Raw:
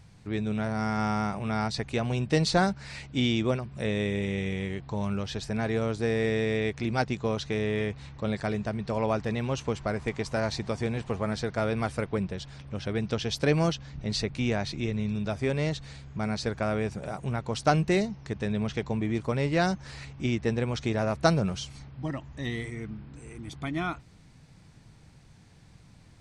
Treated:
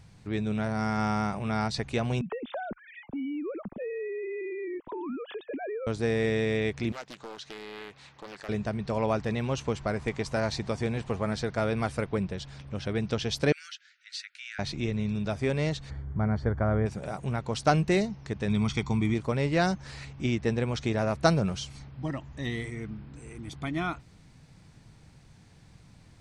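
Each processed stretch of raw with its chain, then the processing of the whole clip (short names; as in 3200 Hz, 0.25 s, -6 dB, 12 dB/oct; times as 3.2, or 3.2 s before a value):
2.21–5.87 sine-wave speech + tilt -3 dB/oct + compressor 8:1, threshold -32 dBFS
6.92–8.49 HPF 780 Hz 6 dB/oct + compressor 2:1, threshold -42 dBFS + Doppler distortion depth 0.71 ms
13.52–14.59 steep high-pass 1400 Hz 96 dB/oct + high shelf 2000 Hz -8 dB
15.89–16.85 polynomial smoothing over 41 samples + bell 75 Hz +12.5 dB 1.2 oct + buzz 100 Hz, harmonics 4, -58 dBFS -1 dB/oct
18.48–19.14 high shelf 5100 Hz +8.5 dB + comb 0.9 ms, depth 67%
whole clip: dry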